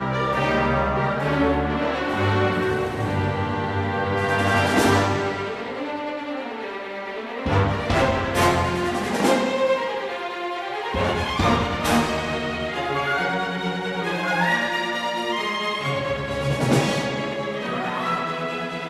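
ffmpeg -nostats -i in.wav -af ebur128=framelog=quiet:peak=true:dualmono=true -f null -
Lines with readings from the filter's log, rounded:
Integrated loudness:
  I:         -19.9 LUFS
  Threshold: -29.9 LUFS
Loudness range:
  LRA:         2.2 LU
  Threshold: -39.9 LUFS
  LRA low:   -20.9 LUFS
  LRA high:  -18.7 LUFS
True peak:
  Peak:       -4.7 dBFS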